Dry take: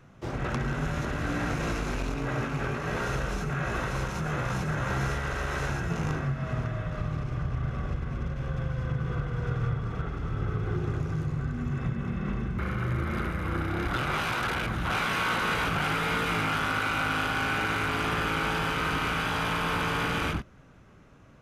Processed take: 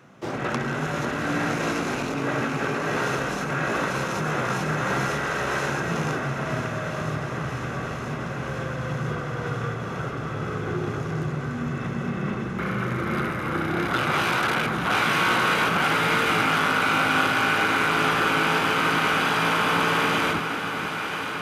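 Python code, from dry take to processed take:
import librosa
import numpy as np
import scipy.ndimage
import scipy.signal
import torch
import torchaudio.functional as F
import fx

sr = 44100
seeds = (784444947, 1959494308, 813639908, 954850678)

y = scipy.signal.sosfilt(scipy.signal.butter(2, 190.0, 'highpass', fs=sr, output='sos'), x)
y = fx.echo_alternate(y, sr, ms=493, hz=1400.0, feedback_pct=89, wet_db=-9)
y = F.gain(torch.from_numpy(y), 6.0).numpy()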